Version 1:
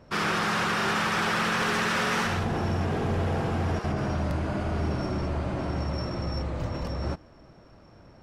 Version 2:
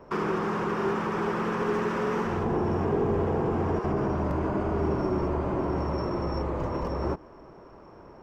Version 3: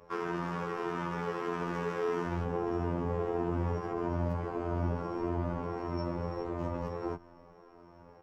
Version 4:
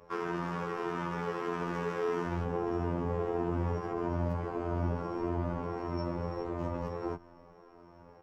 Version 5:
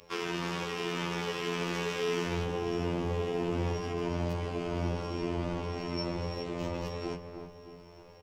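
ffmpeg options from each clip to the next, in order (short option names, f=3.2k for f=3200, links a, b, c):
-filter_complex "[0:a]equalizer=f=100:t=o:w=0.67:g=-5,equalizer=f=400:t=o:w=0.67:g=10,equalizer=f=1k:t=o:w=0.67:g=10,equalizer=f=4k:t=o:w=0.67:g=-8,equalizer=f=10k:t=o:w=0.67:g=-10,acrossover=split=450[a][b];[b]acompressor=threshold=-32dB:ratio=6[c];[a][c]amix=inputs=2:normalize=0"
-filter_complex "[0:a]afftfilt=real='hypot(re,im)*cos(PI*b)':imag='0':win_size=2048:overlap=0.75,asplit=2[a][b];[b]adelay=7.6,afreqshift=1.6[c];[a][c]amix=inputs=2:normalize=1"
-af anull
-filter_complex "[0:a]highshelf=f=2k:t=q:w=1.5:g=12.5,asplit=2[a][b];[b]adelay=310,lowpass=f=1.4k:p=1,volume=-7.5dB,asplit=2[c][d];[d]adelay=310,lowpass=f=1.4k:p=1,volume=0.52,asplit=2[e][f];[f]adelay=310,lowpass=f=1.4k:p=1,volume=0.52,asplit=2[g][h];[h]adelay=310,lowpass=f=1.4k:p=1,volume=0.52,asplit=2[i][j];[j]adelay=310,lowpass=f=1.4k:p=1,volume=0.52,asplit=2[k][l];[l]adelay=310,lowpass=f=1.4k:p=1,volume=0.52[m];[a][c][e][g][i][k][m]amix=inputs=7:normalize=0"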